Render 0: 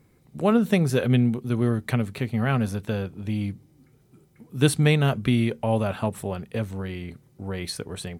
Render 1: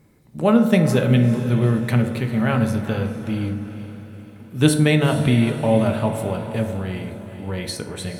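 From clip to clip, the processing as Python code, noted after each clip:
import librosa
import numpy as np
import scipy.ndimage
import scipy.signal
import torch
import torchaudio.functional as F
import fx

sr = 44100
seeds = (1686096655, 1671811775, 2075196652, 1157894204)

y = fx.echo_diffused(x, sr, ms=452, feedback_pct=49, wet_db=-11.5)
y = fx.rev_fdn(y, sr, rt60_s=1.1, lf_ratio=1.1, hf_ratio=0.45, size_ms=10.0, drr_db=4.5)
y = y * librosa.db_to_amplitude(2.5)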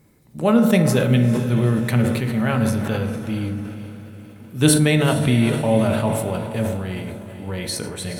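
y = fx.high_shelf(x, sr, hz=5500.0, db=5.5)
y = fx.sustainer(y, sr, db_per_s=40.0)
y = y * librosa.db_to_amplitude(-1.0)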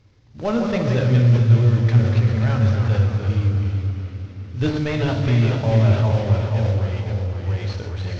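y = fx.cvsd(x, sr, bps=32000)
y = fx.echo_pitch(y, sr, ms=128, semitones=-1, count=3, db_per_echo=-6.0)
y = fx.low_shelf_res(y, sr, hz=130.0, db=7.0, q=3.0)
y = y * librosa.db_to_amplitude(-3.5)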